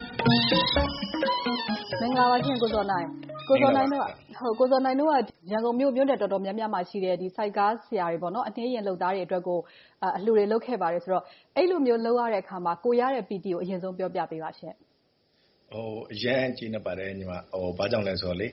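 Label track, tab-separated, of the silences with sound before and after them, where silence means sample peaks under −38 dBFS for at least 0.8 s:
14.720000	15.720000	silence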